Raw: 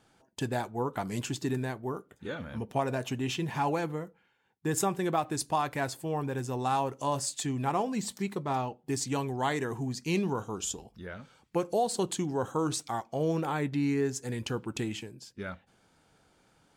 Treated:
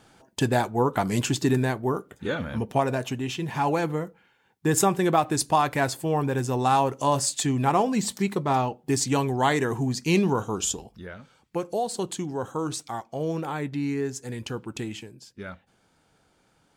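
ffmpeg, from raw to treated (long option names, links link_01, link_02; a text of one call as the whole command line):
ffmpeg -i in.wav -af "volume=15.5dB,afade=type=out:start_time=2.36:duration=0.97:silence=0.398107,afade=type=in:start_time=3.33:duration=0.68:silence=0.473151,afade=type=out:start_time=10.66:duration=0.5:silence=0.446684" out.wav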